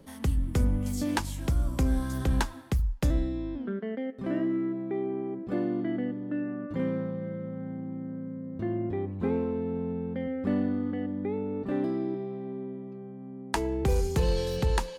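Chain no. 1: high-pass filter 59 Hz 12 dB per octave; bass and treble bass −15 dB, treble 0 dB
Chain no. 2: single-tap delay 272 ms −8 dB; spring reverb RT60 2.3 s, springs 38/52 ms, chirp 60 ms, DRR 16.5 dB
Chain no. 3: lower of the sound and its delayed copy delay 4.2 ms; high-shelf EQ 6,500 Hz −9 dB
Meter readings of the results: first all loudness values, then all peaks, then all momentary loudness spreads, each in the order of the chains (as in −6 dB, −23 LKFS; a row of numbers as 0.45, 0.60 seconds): −36.5, −30.5, −33.0 LKFS; −13.5, −14.0, −16.0 dBFS; 10, 9, 9 LU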